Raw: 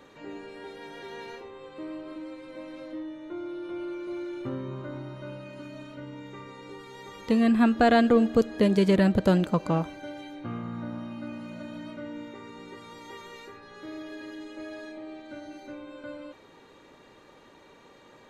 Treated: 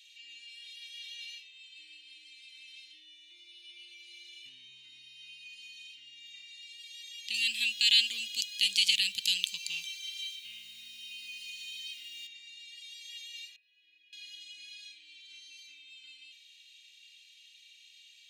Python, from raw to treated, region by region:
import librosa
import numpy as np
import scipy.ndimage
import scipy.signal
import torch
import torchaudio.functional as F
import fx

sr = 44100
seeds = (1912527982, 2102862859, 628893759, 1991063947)

y = fx.chain(x, sr, fx.high_shelf(hz=2400.0, db=9.5),
    fx.quant_dither(seeds[0], bits=10, dither='none'),
    fx.highpass(hz=51.0, slope=12), at=(7.34, 12.27))
y = fx.chain(y, sr, fx.vowel_filter(vowel='e'),
    fx.tilt_eq(slope=-2.0), at=(13.56, 14.13))
y = scipy.signal.sosfilt(scipy.signal.ellip(4, 1.0, 50, 2700.0, 'highpass', fs=sr, output='sos'), y)
y = fx.high_shelf(y, sr, hz=5500.0, db=-8.5)
y = y * librosa.db_to_amplitude(11.0)